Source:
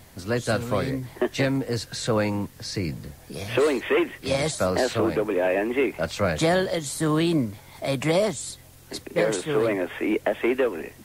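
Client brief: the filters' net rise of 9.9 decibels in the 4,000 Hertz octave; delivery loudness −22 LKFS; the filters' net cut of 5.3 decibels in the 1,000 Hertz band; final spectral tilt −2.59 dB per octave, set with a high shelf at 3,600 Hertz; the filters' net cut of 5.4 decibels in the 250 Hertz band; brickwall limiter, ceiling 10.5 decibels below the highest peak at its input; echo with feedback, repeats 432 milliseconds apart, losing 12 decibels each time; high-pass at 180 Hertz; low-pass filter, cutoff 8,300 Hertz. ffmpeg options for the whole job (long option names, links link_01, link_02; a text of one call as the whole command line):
ffmpeg -i in.wav -af "highpass=180,lowpass=8300,equalizer=frequency=250:width_type=o:gain=-6,equalizer=frequency=1000:width_type=o:gain=-8.5,highshelf=frequency=3600:gain=7,equalizer=frequency=4000:width_type=o:gain=8,alimiter=limit=-18.5dB:level=0:latency=1,aecho=1:1:432|864|1296:0.251|0.0628|0.0157,volume=6.5dB" out.wav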